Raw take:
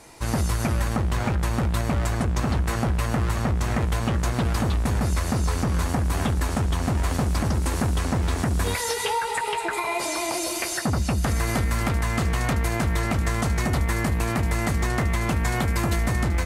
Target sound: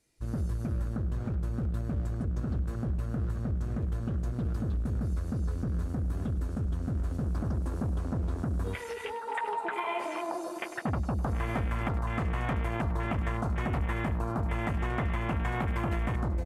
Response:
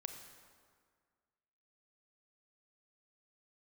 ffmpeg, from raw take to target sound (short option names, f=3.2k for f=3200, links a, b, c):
-filter_complex "[0:a]afwtdn=0.0355,asetnsamples=n=441:p=0,asendcmd='7.24 equalizer g -7;9.27 equalizer g 2.5',equalizer=f=910:w=1.2:g=-15,asplit=2[a][b];[b]adelay=100,highpass=300,lowpass=3.4k,asoftclip=type=hard:threshold=-20dB,volume=-14dB[c];[a][c]amix=inputs=2:normalize=0,volume=-7dB"